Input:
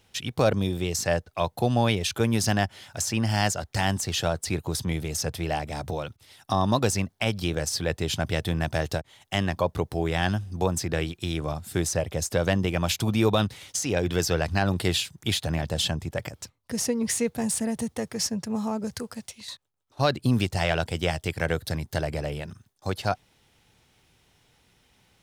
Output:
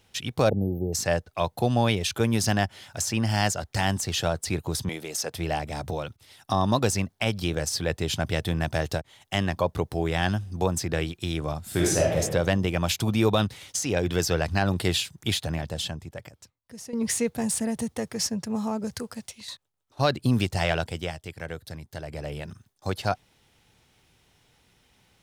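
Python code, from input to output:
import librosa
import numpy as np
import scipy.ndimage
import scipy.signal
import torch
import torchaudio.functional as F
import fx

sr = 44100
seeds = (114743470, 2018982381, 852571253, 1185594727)

y = fx.spec_erase(x, sr, start_s=0.49, length_s=0.45, low_hz=870.0, high_hz=12000.0)
y = fx.highpass(y, sr, hz=310.0, slope=12, at=(4.89, 5.34))
y = fx.reverb_throw(y, sr, start_s=11.63, length_s=0.55, rt60_s=0.86, drr_db=-3.0)
y = fx.edit(y, sr, fx.fade_out_to(start_s=15.29, length_s=1.64, curve='qua', floor_db=-14.0),
    fx.fade_down_up(start_s=20.7, length_s=1.81, db=-9.5, fade_s=0.49), tone=tone)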